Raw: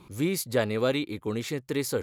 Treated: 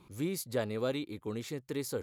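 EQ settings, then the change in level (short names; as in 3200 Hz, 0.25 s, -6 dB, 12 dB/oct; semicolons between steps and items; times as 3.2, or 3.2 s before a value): dynamic EQ 2200 Hz, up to -4 dB, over -42 dBFS, Q 1; -7.0 dB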